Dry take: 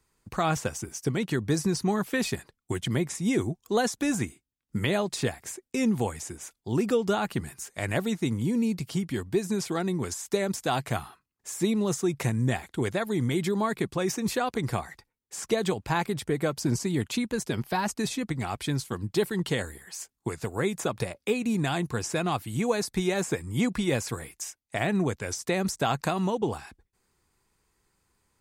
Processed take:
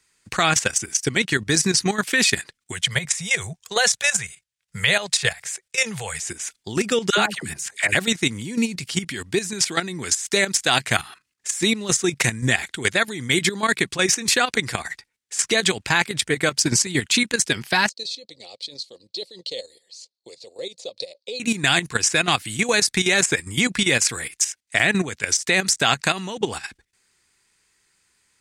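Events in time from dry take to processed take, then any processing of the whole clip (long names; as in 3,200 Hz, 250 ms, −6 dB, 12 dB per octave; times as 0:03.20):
0:02.72–0:06.20: Chebyshev band-stop filter 160–500 Hz
0:07.10–0:07.95: all-pass dispersion lows, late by 77 ms, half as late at 840 Hz
0:17.89–0:21.40: pair of resonant band-passes 1,500 Hz, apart 3 octaves
whole clip: flat-topped bell 3,800 Hz +12.5 dB 3 octaves; output level in coarse steps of 12 dB; low-shelf EQ 69 Hz −9 dB; level +6.5 dB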